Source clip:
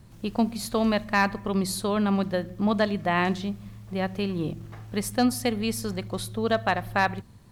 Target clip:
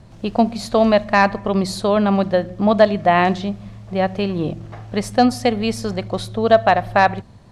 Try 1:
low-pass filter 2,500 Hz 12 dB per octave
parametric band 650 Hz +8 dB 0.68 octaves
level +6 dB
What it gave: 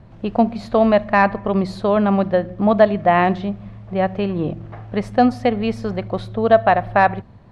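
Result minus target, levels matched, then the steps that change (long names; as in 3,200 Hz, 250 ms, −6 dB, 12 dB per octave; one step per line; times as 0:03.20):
8,000 Hz band −15.5 dB
change: low-pass filter 6,700 Hz 12 dB per octave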